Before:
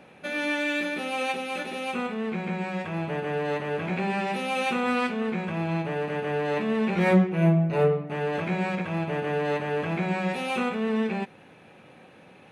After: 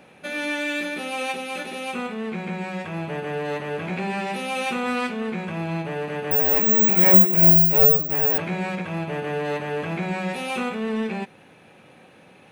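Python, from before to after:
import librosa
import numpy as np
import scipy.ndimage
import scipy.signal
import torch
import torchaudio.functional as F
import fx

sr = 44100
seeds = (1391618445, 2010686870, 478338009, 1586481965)

p1 = 10.0 ** (-19.0 / 20.0) * np.tanh(x / 10.0 ** (-19.0 / 20.0))
p2 = x + F.gain(torch.from_numpy(p1), -4.5).numpy()
p3 = fx.resample_bad(p2, sr, factor=2, down='none', up='zero_stuff', at=(6.31, 8.38))
p4 = fx.high_shelf(p3, sr, hz=5100.0, db=6.5)
y = F.gain(torch.from_numpy(p4), -3.5).numpy()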